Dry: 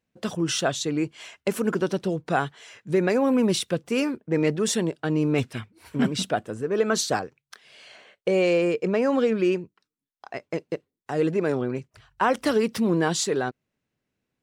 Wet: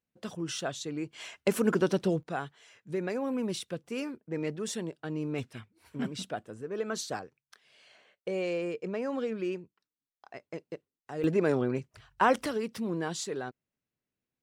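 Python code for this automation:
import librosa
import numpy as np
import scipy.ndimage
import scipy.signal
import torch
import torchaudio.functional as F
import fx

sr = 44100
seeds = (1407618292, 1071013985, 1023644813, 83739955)

y = fx.gain(x, sr, db=fx.steps((0.0, -10.0), (1.13, -1.5), (2.23, -11.0), (11.24, -2.0), (12.46, -10.5)))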